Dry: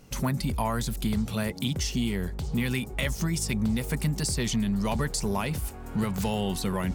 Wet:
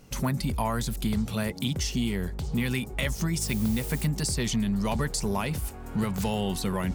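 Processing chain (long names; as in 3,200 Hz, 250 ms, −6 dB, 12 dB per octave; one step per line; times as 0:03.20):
0:03.40–0:04.04: background noise blue −42 dBFS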